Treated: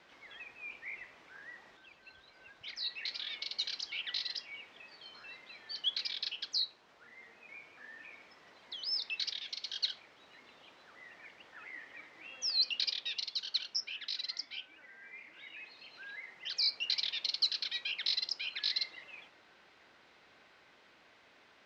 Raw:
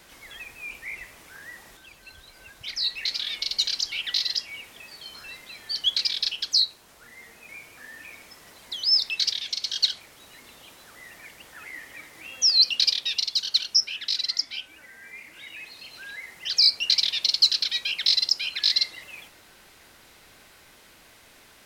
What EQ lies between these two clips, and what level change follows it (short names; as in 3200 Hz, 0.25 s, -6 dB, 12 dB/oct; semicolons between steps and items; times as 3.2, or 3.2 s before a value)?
HPF 320 Hz 6 dB/oct; air absorption 200 m; -5.5 dB